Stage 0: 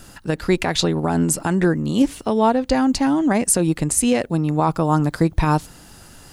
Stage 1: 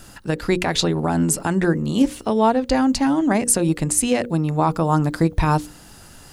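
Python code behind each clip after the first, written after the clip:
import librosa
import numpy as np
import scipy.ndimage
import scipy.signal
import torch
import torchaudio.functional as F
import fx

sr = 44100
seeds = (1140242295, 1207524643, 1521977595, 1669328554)

y = fx.hum_notches(x, sr, base_hz=60, count=9)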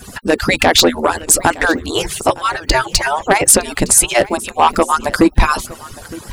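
y = fx.hpss_only(x, sr, part='percussive')
y = fx.fold_sine(y, sr, drive_db=8, ceiling_db=-5.0)
y = y + 10.0 ** (-20.0 / 20.0) * np.pad(y, (int(912 * sr / 1000.0), 0))[:len(y)]
y = y * 10.0 ** (2.0 / 20.0)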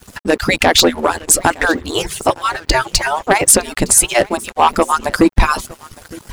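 y = np.sign(x) * np.maximum(np.abs(x) - 10.0 ** (-36.5 / 20.0), 0.0)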